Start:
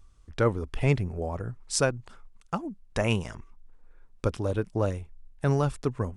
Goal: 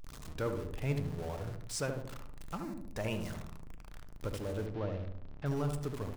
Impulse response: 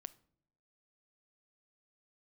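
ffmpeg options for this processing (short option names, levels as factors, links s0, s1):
-filter_complex "[0:a]aeval=exprs='val(0)+0.5*0.0398*sgn(val(0))':c=same,asettb=1/sr,asplit=3[s0][s1][s2];[s0]atrim=end=2.574[s3];[s1]atrim=start=2.57:end=2.97,asetpts=PTS-STARTPTS,afade=t=in:d=0.004:c=qsin,afade=t=out:st=0.396:d=0.004:c=qsin,equalizer=f=3200:w=4.4:g=-14[s4];[s2]atrim=start=2.966[s5];[s3][s4]acrossfade=d=0.004:c1=hsin:c2=qsin[s6];[s6][s5]acrossfade=d=0.004:c1=qsin:c2=hsin,asettb=1/sr,asplit=3[s7][s8][s9];[s7]atrim=end=4.664[s10];[s8]atrim=start=4.66:end=5.46,asetpts=PTS-STARTPTS,afade=t=in:d=0.004:c=qsin,afade=t=out:st=0.796:d=0.004:c=qsin,lowpass=f=4300:w=0.5412,lowpass=f=4300:w=1.3066[s11];[s9]atrim=start=5.456[s12];[s10][s11]acrossfade=d=0.004:c1=hsin:c2=qsin[s13];[s13][s12]acrossfade=d=0.004:c1=qsin:c2=hsin,asplit=2[s14][s15];[s15]adelay=75,lowpass=f=940:p=1,volume=0.631,asplit=2[s16][s17];[s17]adelay=75,lowpass=f=940:p=1,volume=0.53,asplit=2[s18][s19];[s19]adelay=75,lowpass=f=940:p=1,volume=0.53,asplit=2[s20][s21];[s21]adelay=75,lowpass=f=940:p=1,volume=0.53,asplit=2[s22][s23];[s23]adelay=75,lowpass=f=940:p=1,volume=0.53,asplit=2[s24][s25];[s25]adelay=75,lowpass=f=940:p=1,volume=0.53,asplit=2[s26][s27];[s27]adelay=75,lowpass=f=940:p=1,volume=0.53[s28];[s14][s16][s18][s20][s22][s24][s26][s28]amix=inputs=8:normalize=0[s29];[1:a]atrim=start_sample=2205[s30];[s29][s30]afir=irnorm=-1:irlink=0,volume=0.398"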